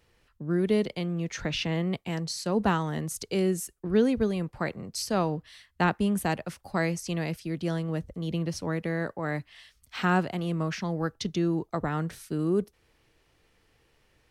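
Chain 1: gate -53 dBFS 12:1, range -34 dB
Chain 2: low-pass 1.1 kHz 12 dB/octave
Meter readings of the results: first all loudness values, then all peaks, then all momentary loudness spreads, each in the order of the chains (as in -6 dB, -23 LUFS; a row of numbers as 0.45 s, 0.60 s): -29.5 LUFS, -30.0 LUFS; -12.5 dBFS, -13.5 dBFS; 8 LU, 8 LU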